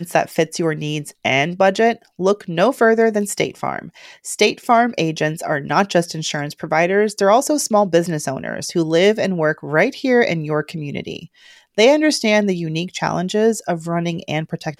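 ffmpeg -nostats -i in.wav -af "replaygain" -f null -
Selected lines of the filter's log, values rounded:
track_gain = -2.9 dB
track_peak = 0.560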